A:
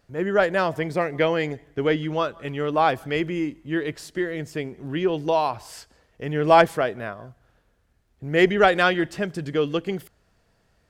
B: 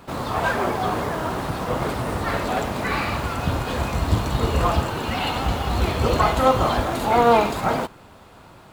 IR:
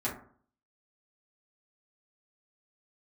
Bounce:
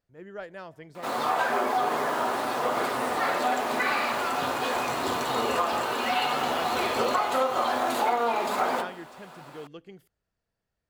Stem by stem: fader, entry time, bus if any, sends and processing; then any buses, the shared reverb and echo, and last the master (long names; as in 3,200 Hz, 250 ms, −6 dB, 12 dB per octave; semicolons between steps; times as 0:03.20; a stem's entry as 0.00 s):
−19.5 dB, 0.00 s, no send, no processing
−3.0 dB, 0.95 s, send −5.5 dB, high-pass filter 460 Hz 12 dB per octave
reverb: on, RT60 0.50 s, pre-delay 4 ms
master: downward compressor 12 to 1, threshold −21 dBFS, peak gain reduction 11 dB